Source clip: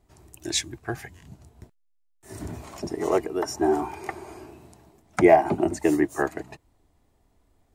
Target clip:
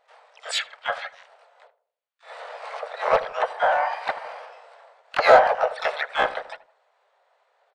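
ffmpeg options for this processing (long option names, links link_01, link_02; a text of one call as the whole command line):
ffmpeg -i in.wav -filter_complex "[0:a]afftfilt=real='re*between(b*sr/4096,500,4700)':imag='im*between(b*sr/4096,500,4700)':win_size=4096:overlap=0.75,asplit=2[link_01][link_02];[link_02]highpass=frequency=720:poles=1,volume=18dB,asoftclip=type=tanh:threshold=-4dB[link_03];[link_01][link_03]amix=inputs=2:normalize=0,lowpass=frequency=1500:poles=1,volume=-6dB,asplit=4[link_04][link_05][link_06][link_07];[link_05]asetrate=35002,aresample=44100,atempo=1.25992,volume=-4dB[link_08];[link_06]asetrate=55563,aresample=44100,atempo=0.793701,volume=-9dB[link_09];[link_07]asetrate=88200,aresample=44100,atempo=0.5,volume=-7dB[link_10];[link_04][link_08][link_09][link_10]amix=inputs=4:normalize=0,asplit=2[link_11][link_12];[link_12]adelay=80,lowpass=frequency=940:poles=1,volume=-13.5dB,asplit=2[link_13][link_14];[link_14]adelay=80,lowpass=frequency=940:poles=1,volume=0.49,asplit=2[link_15][link_16];[link_16]adelay=80,lowpass=frequency=940:poles=1,volume=0.49,asplit=2[link_17][link_18];[link_18]adelay=80,lowpass=frequency=940:poles=1,volume=0.49,asplit=2[link_19][link_20];[link_20]adelay=80,lowpass=frequency=940:poles=1,volume=0.49[link_21];[link_13][link_15][link_17][link_19][link_21]amix=inputs=5:normalize=0[link_22];[link_11][link_22]amix=inputs=2:normalize=0,volume=-2dB" out.wav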